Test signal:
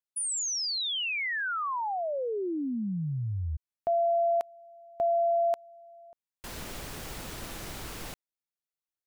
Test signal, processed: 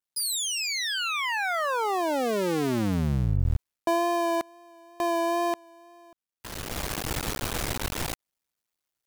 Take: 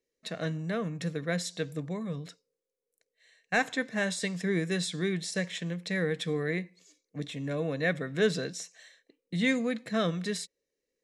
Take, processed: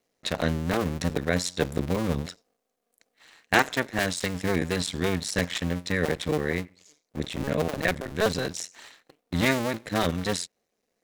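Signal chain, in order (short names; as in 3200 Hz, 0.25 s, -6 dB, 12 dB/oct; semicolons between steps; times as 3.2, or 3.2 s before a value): cycle switcher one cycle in 2, muted; vocal rider within 5 dB 0.5 s; wow and flutter 23 cents; gain +7 dB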